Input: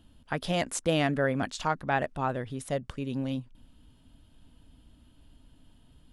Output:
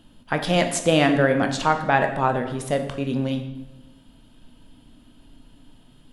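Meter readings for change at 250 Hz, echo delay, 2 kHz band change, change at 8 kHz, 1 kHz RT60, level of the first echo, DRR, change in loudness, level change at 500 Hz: +8.5 dB, no echo audible, +9.0 dB, +7.0 dB, 0.95 s, no echo audible, 5.5 dB, +8.5 dB, +9.0 dB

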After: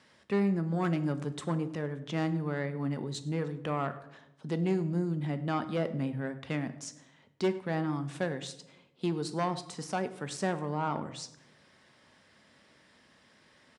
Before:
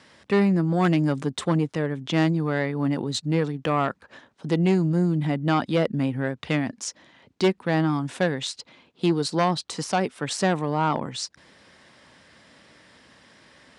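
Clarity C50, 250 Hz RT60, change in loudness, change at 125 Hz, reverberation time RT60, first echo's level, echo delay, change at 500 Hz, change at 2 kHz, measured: 14.0 dB, 1.1 s, −8.5 dB, −8.0 dB, 0.90 s, −21.5 dB, 101 ms, −8.5 dB, −9.5 dB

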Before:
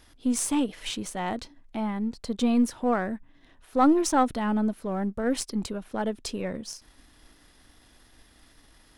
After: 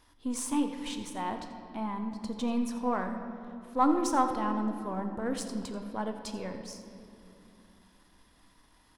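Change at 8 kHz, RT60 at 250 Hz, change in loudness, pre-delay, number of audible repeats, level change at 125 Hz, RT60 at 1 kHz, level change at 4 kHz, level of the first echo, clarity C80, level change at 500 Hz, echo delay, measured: −7.0 dB, 3.8 s, −5.0 dB, 7 ms, 1, can't be measured, 2.5 s, −6.5 dB, −16.0 dB, 8.0 dB, −6.0 dB, 86 ms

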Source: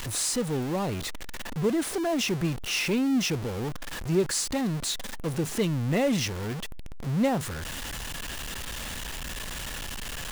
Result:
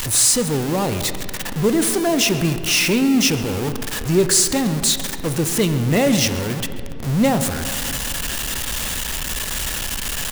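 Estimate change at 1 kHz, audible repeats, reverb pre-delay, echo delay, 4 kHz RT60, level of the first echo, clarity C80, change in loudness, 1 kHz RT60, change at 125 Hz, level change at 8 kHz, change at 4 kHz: +8.5 dB, 1, 9 ms, 134 ms, 1.6 s, −19.0 dB, 10.5 dB, +10.0 dB, 2.4 s, +8.0 dB, +13.5 dB, +11.0 dB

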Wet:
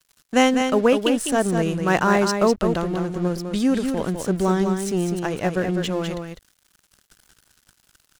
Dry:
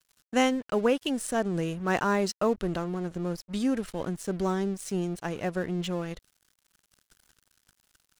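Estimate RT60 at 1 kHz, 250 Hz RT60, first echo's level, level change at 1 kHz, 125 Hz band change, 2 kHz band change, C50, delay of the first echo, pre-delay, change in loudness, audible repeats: no reverb audible, no reverb audible, −6.0 dB, +8.0 dB, +8.0 dB, +8.0 dB, no reverb audible, 202 ms, no reverb audible, +8.0 dB, 1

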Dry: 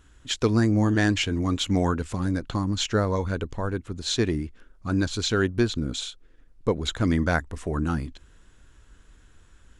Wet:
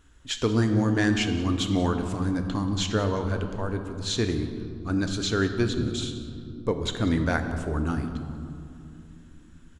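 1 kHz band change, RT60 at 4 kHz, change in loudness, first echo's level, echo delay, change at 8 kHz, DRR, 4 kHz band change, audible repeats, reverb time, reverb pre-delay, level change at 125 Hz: −1.5 dB, 1.3 s, −1.5 dB, −18.0 dB, 184 ms, −2.0 dB, 5.5 dB, −1.5 dB, 1, 2.7 s, 3 ms, −1.0 dB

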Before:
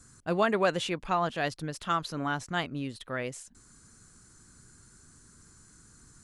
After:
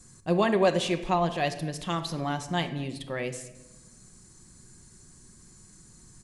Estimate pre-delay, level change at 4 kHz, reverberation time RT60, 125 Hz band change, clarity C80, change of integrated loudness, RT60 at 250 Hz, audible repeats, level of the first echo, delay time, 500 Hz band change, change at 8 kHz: 5 ms, +3.0 dB, 1.0 s, +5.0 dB, 14.0 dB, +2.5 dB, 1.2 s, 1, −23.5 dB, 227 ms, +3.5 dB, +3.0 dB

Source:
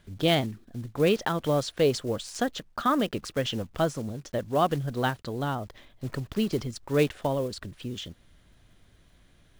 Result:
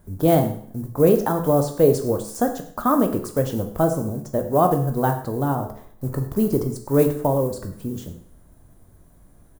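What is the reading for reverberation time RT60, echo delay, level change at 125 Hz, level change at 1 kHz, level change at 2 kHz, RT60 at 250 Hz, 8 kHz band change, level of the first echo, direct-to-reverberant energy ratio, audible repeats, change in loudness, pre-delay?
0.55 s, 103 ms, +7.5 dB, +6.0 dB, −3.5 dB, 0.55 s, +5.0 dB, −17.0 dB, 5.0 dB, 1, +7.0 dB, 14 ms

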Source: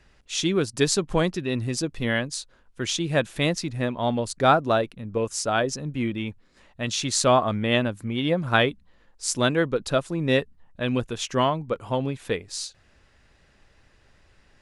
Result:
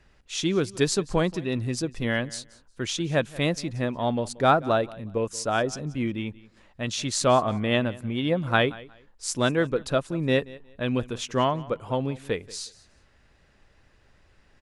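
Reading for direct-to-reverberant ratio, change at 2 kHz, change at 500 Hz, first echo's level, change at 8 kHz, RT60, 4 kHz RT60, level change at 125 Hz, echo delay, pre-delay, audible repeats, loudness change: no reverb audible, −2.0 dB, −1.0 dB, −20.5 dB, −3.5 dB, no reverb audible, no reverb audible, −1.0 dB, 181 ms, no reverb audible, 2, −1.5 dB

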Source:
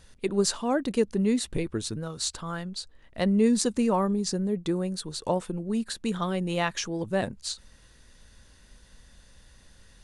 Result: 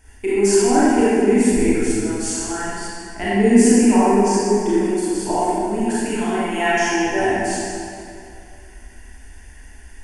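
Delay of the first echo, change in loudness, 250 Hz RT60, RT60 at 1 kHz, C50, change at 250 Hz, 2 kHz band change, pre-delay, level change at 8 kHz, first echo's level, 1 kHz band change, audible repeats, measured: no echo audible, +10.5 dB, 2.5 s, 2.5 s, −6.0 dB, +10.0 dB, +13.5 dB, 27 ms, +10.0 dB, no echo audible, +13.0 dB, no echo audible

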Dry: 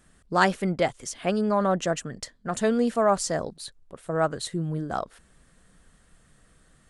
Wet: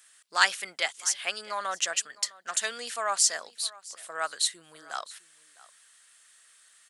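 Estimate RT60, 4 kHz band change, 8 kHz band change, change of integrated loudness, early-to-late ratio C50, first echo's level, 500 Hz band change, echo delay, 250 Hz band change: no reverb audible, +7.5 dB, +8.5 dB, −2.5 dB, no reverb audible, −21.0 dB, −14.5 dB, 657 ms, −29.0 dB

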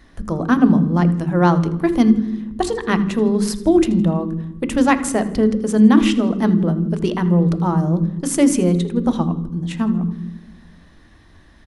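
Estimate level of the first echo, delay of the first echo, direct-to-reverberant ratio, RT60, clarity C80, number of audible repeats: −18.0 dB, 81 ms, 10.0 dB, 1.1 s, 14.0 dB, 2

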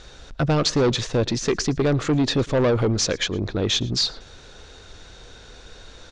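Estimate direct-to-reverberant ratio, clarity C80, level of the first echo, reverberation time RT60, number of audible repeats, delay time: no reverb audible, no reverb audible, −23.0 dB, no reverb audible, 1, 112 ms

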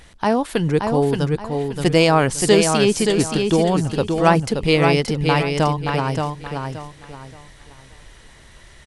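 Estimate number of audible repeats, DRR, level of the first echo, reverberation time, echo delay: 3, no reverb audible, −5.0 dB, no reverb audible, 575 ms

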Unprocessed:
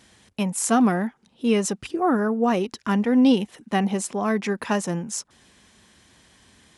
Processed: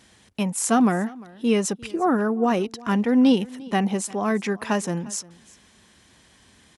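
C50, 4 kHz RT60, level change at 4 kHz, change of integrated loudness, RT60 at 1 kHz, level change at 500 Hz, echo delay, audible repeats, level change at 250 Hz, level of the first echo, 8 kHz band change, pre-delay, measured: no reverb audible, no reverb audible, 0.0 dB, 0.0 dB, no reverb audible, 0.0 dB, 350 ms, 1, 0.0 dB, −22.0 dB, 0.0 dB, no reverb audible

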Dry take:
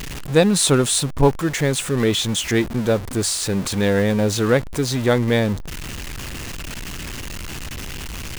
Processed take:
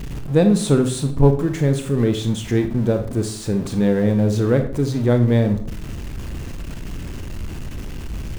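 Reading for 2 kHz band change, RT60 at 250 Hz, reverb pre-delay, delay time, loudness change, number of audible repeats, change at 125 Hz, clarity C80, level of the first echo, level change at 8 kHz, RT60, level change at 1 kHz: −8.0 dB, 0.65 s, 25 ms, no echo audible, 0.0 dB, no echo audible, +4.0 dB, 14.0 dB, no echo audible, −10.5 dB, 0.55 s, −5.0 dB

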